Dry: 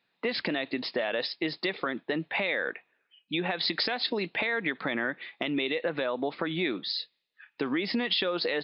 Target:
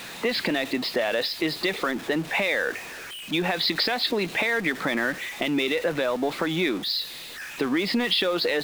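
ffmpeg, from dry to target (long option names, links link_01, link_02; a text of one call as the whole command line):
ffmpeg -i in.wav -af "aeval=exprs='val(0)+0.5*0.0158*sgn(val(0))':channel_layout=same,volume=3.5dB" out.wav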